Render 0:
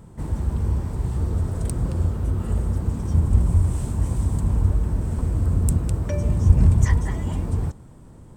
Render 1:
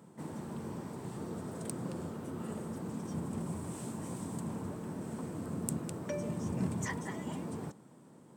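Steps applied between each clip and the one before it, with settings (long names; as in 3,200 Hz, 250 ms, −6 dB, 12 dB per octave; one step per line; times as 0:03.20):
high-pass filter 170 Hz 24 dB per octave
level −6.5 dB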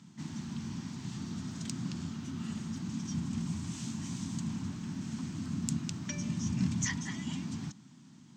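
drawn EQ curve 260 Hz 0 dB, 490 Hz −26 dB, 720 Hz −13 dB, 3,100 Hz +6 dB, 6,500 Hz +9 dB, 9,300 Hz −15 dB
level +3.5 dB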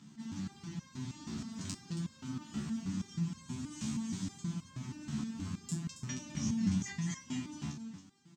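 single-tap delay 274 ms −8.5 dB
step-sequenced resonator 6.3 Hz 72–530 Hz
level +8.5 dB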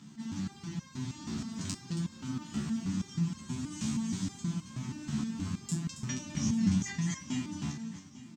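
repeating echo 848 ms, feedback 45%, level −17 dB
level +4 dB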